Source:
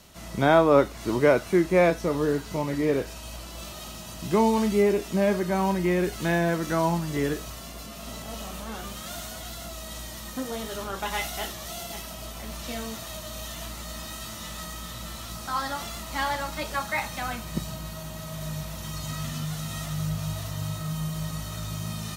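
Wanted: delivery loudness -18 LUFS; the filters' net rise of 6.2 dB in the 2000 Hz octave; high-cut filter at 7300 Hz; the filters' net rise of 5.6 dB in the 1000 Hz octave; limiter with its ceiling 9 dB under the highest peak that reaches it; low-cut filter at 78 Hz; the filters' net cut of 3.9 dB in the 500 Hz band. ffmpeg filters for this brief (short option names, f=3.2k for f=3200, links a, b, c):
-af "highpass=78,lowpass=7.3k,equalizer=f=500:t=o:g=-8,equalizer=f=1k:t=o:g=8,equalizer=f=2k:t=o:g=5.5,volume=10.5dB,alimiter=limit=-2.5dB:level=0:latency=1"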